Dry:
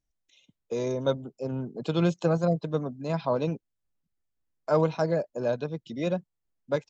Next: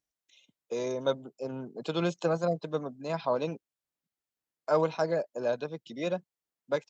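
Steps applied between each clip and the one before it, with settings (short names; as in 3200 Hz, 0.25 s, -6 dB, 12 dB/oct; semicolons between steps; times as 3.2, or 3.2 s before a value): HPF 410 Hz 6 dB/oct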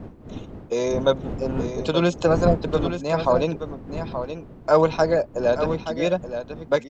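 wind noise 290 Hz -42 dBFS; on a send: echo 0.876 s -9.5 dB; on the sum: gain +9 dB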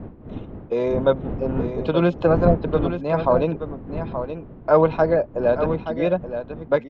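air absorption 400 m; gain +2.5 dB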